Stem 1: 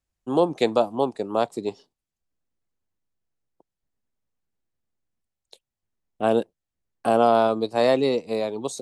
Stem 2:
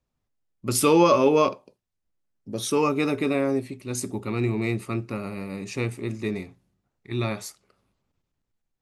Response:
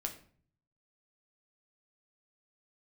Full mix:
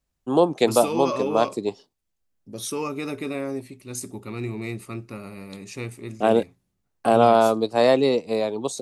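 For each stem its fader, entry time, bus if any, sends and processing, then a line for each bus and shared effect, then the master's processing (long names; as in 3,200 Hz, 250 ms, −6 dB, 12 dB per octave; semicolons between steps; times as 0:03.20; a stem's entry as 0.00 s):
+2.0 dB, 0.00 s, no send, no processing
−5.5 dB, 0.00 s, no send, high-shelf EQ 5,900 Hz +8 dB; brickwall limiter −13 dBFS, peak gain reduction 8.5 dB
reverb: not used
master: no processing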